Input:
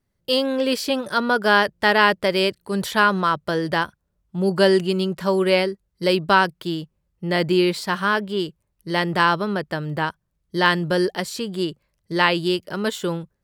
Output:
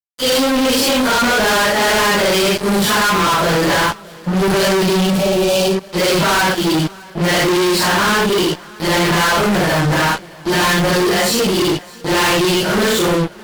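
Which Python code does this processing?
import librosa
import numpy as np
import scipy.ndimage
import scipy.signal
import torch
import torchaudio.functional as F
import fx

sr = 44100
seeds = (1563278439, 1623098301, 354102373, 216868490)

p1 = fx.phase_scramble(x, sr, seeds[0], window_ms=200)
p2 = fx.fuzz(p1, sr, gain_db=38.0, gate_db=-40.0)
p3 = fx.spec_repair(p2, sr, seeds[1], start_s=5.09, length_s=0.66, low_hz=910.0, high_hz=2300.0, source='both')
y = p3 + fx.echo_feedback(p3, sr, ms=613, feedback_pct=54, wet_db=-23, dry=0)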